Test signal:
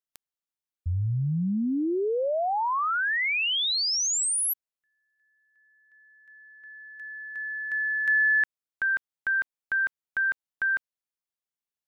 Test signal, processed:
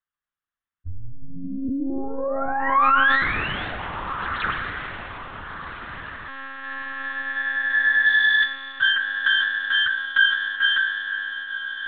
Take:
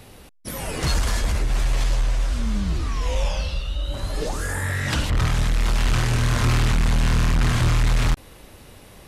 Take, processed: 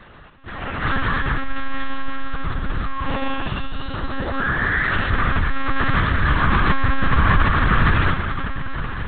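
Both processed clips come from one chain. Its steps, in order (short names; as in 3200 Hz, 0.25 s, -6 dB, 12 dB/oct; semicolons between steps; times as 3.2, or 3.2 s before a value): self-modulated delay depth 0.12 ms; band shelf 1400 Hz +10 dB 1 oct; diffused feedback echo 1.424 s, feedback 48%, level -10.5 dB; Schroeder reverb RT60 3 s, combs from 30 ms, DRR 5 dB; monotone LPC vocoder at 8 kHz 270 Hz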